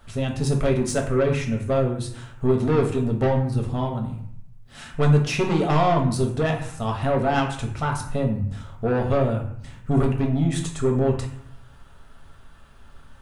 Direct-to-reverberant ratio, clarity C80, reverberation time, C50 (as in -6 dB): 0.5 dB, 11.0 dB, 0.70 s, 7.5 dB